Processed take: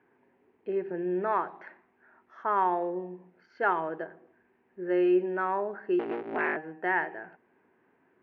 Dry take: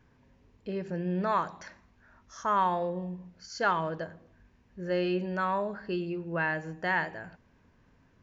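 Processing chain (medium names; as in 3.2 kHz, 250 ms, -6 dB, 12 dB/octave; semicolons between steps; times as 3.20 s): 5.99–6.57 s: cycle switcher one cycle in 3, inverted; cabinet simulation 340–2300 Hz, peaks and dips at 370 Hz +10 dB, 560 Hz -5 dB, 790 Hz +4 dB, 1.1 kHz -4 dB; trim +1 dB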